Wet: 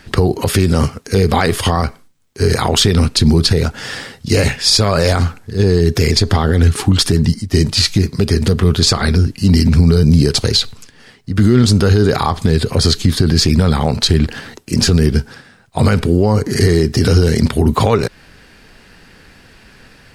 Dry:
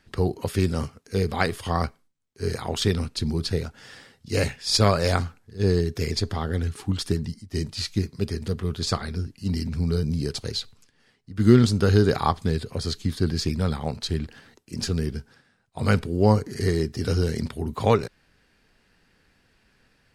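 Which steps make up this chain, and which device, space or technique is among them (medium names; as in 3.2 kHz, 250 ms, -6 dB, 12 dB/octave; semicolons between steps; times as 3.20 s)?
loud club master (compression 2:1, threshold -26 dBFS, peak gain reduction 9.5 dB; hard clipper -12 dBFS, distortion -38 dB; loudness maximiser +20.5 dB); trim -1 dB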